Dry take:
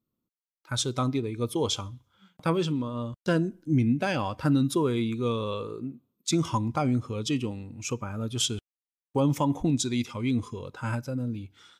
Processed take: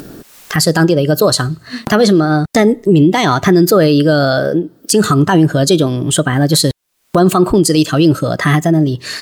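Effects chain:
upward compression, threshold −28 dBFS
speed change +28%
boost into a limiter +20.5 dB
level −1 dB

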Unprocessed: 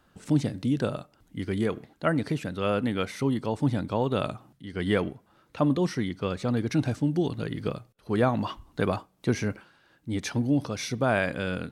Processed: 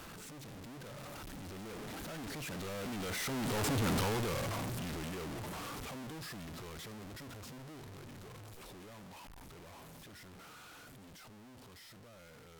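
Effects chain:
sign of each sample alone
source passing by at 0:03.60, 18 m/s, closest 4.9 metres
in parallel at −1 dB: downward compressor, threshold −43 dBFS, peak gain reduction 12.5 dB
on the sum: speed change −7%
level −4.5 dB

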